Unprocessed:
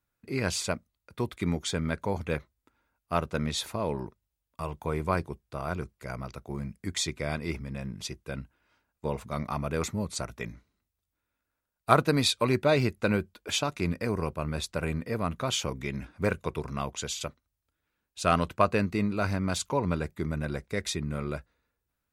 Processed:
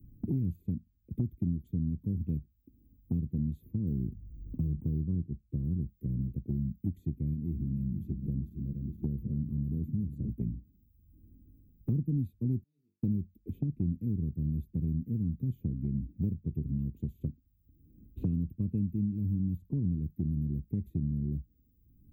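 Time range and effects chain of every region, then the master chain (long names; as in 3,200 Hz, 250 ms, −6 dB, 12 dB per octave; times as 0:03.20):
0:03.87–0:05.03: bad sample-rate conversion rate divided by 3×, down none, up hold + envelope flattener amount 50%
0:07.33–0:10.30: feedback delay that plays each chunk backwards 234 ms, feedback 66%, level −13 dB + downward compressor 1.5 to 1, threshold −37 dBFS
0:12.63–0:13.03: resonant band-pass 5,400 Hz, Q 17 + flutter between parallel walls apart 3.5 metres, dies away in 0.24 s
whole clip: inverse Chebyshev band-stop filter 680–9,600 Hz, stop band 50 dB; dynamic equaliser 570 Hz, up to −6 dB, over −50 dBFS, Q 0.81; multiband upward and downward compressor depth 100%; level +2.5 dB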